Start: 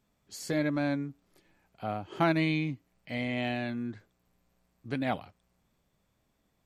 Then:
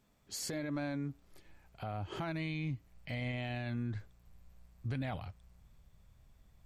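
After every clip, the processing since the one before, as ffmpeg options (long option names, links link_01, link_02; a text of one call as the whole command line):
ffmpeg -i in.wav -af "asubboost=boost=8:cutoff=100,acompressor=threshold=-33dB:ratio=6,alimiter=level_in=8.5dB:limit=-24dB:level=0:latency=1:release=34,volume=-8.5dB,volume=2.5dB" out.wav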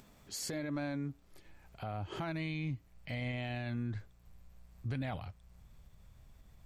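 ffmpeg -i in.wav -af "acompressor=mode=upward:threshold=-50dB:ratio=2.5" out.wav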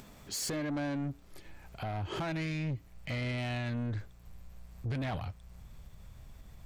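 ffmpeg -i in.wav -af "asoftclip=type=tanh:threshold=-38dB,volume=7.5dB" out.wav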